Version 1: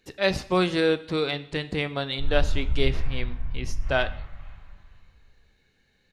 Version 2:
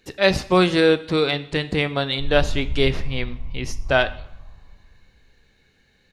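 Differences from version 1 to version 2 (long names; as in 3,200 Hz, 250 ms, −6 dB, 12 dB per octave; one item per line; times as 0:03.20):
speech +6.0 dB
background: add Chebyshev low-pass filter 1,100 Hz, order 4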